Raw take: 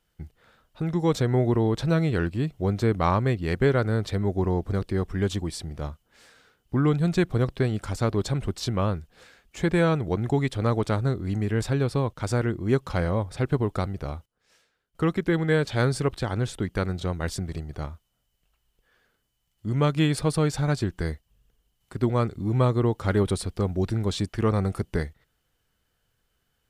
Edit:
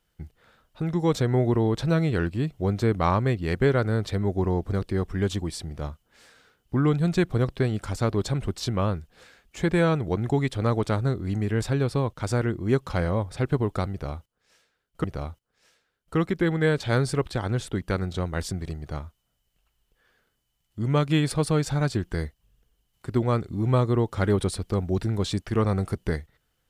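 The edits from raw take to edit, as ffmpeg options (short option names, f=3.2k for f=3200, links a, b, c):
-filter_complex "[0:a]asplit=2[a][b];[a]atrim=end=15.042[c];[b]atrim=start=13.908[d];[c][d]acrossfade=d=0.004:c1=hsin:c2=hsin"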